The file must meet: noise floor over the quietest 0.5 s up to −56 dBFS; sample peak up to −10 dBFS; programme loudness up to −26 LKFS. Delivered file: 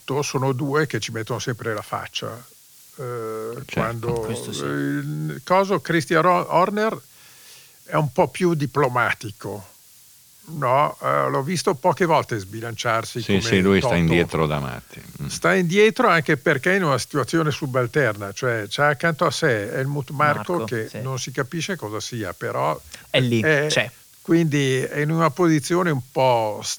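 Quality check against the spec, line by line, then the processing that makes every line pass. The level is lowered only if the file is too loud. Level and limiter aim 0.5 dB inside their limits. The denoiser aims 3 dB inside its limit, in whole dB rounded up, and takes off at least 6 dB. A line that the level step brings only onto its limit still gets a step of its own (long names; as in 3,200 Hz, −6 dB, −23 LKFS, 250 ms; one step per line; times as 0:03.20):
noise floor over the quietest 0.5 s −50 dBFS: out of spec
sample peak −5.0 dBFS: out of spec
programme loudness −21.5 LKFS: out of spec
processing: broadband denoise 6 dB, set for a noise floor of −50 dBFS
level −5 dB
brickwall limiter −10.5 dBFS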